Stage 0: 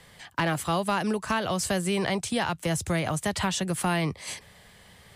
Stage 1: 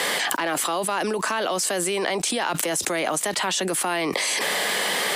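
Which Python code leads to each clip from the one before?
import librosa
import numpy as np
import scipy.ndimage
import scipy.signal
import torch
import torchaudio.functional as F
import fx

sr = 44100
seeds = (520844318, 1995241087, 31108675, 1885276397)

y = scipy.signal.sosfilt(scipy.signal.butter(4, 280.0, 'highpass', fs=sr, output='sos'), x)
y = fx.env_flatten(y, sr, amount_pct=100)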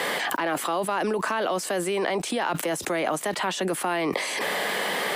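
y = fx.peak_eq(x, sr, hz=7300.0, db=-9.5, octaves=2.4)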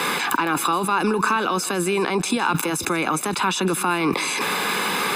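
y = x + 0.78 * np.pad(x, (int(0.8 * sr / 1000.0), 0))[:len(x)]
y = y + 10.0 ** (-17.5 / 20.0) * np.pad(y, (int(159 * sr / 1000.0), 0))[:len(y)]
y = F.gain(torch.from_numpy(y), 4.0).numpy()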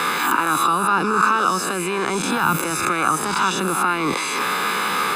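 y = fx.spec_swells(x, sr, rise_s=0.83)
y = fx.peak_eq(y, sr, hz=1300.0, db=8.5, octaves=0.42)
y = F.gain(torch.from_numpy(y), -3.5).numpy()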